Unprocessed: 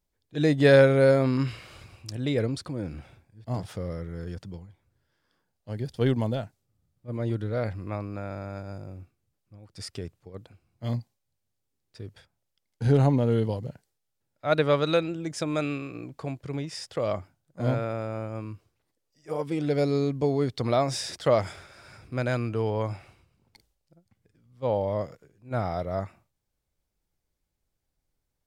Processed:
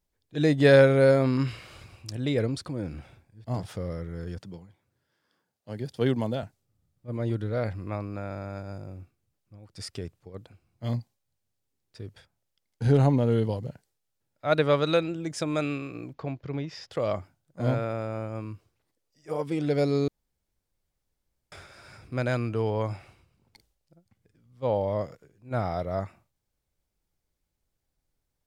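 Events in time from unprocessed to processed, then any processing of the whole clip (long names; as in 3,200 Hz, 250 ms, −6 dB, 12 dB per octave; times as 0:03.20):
0:04.40–0:06.43: high-pass filter 130 Hz
0:16.13–0:16.91: moving average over 5 samples
0:20.08–0:21.52: fill with room tone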